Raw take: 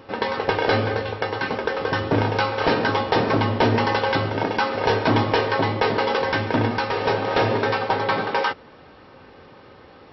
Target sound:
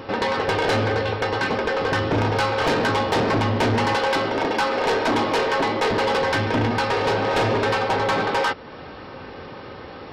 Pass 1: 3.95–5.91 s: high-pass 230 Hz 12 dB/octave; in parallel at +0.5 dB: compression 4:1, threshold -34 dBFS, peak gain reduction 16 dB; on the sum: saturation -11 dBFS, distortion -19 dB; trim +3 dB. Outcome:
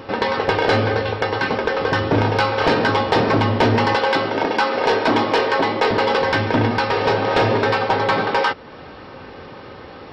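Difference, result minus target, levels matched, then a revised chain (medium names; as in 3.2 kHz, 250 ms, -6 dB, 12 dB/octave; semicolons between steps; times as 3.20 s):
saturation: distortion -9 dB
3.95–5.91 s: high-pass 230 Hz 12 dB/octave; in parallel at +0.5 dB: compression 4:1, threshold -34 dBFS, peak gain reduction 16 dB; on the sum: saturation -19.5 dBFS, distortion -10 dB; trim +3 dB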